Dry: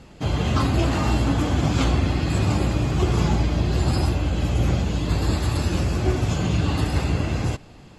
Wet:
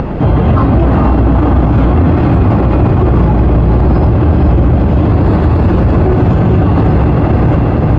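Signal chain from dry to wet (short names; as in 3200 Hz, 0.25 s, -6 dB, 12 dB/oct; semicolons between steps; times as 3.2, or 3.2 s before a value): LPF 1200 Hz 12 dB/oct; upward compressor, threshold -27 dBFS; on a send: diffused feedback echo 0.486 s, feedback 55%, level -5 dB; on the sum: maximiser +21 dB; gain -1 dB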